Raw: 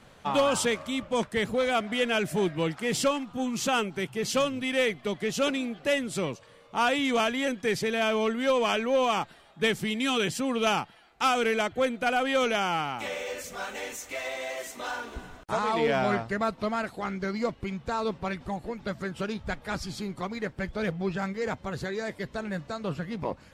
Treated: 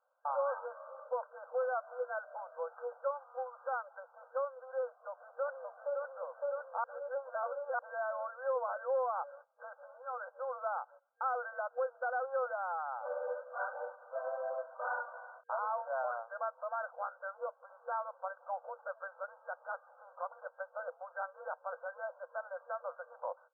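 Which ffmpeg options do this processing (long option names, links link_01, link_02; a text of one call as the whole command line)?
ffmpeg -i in.wav -filter_complex "[0:a]asplit=2[link_01][link_02];[link_02]afade=type=in:start_time=5.08:duration=0.01,afade=type=out:start_time=6.09:duration=0.01,aecho=0:1:560|1120|1680|2240|2800|3360|3920|4480|5040|5600|6160:0.794328|0.516313|0.335604|0.218142|0.141793|0.0921652|0.0599074|0.0389398|0.0253109|0.0164521|0.0106938[link_03];[link_01][link_03]amix=inputs=2:normalize=0,asplit=3[link_04][link_05][link_06];[link_04]atrim=end=6.842[link_07];[link_05]atrim=start=6.838:end=7.792,asetpts=PTS-STARTPTS,areverse[link_08];[link_06]atrim=start=7.788[link_09];[link_07][link_08]acrossfade=duration=0.004:curve1=hsin:curve2=hsin[link_10];[link_10][link_09]acrossfade=duration=0.004:curve1=hsin:curve2=hsin,agate=range=-20dB:threshold=-46dB:ratio=16:detection=peak,alimiter=limit=-24dB:level=0:latency=1:release=310,afftfilt=real='re*between(b*sr/4096,480,1600)':imag='im*between(b*sr/4096,480,1600)':win_size=4096:overlap=0.75,volume=-1.5dB" out.wav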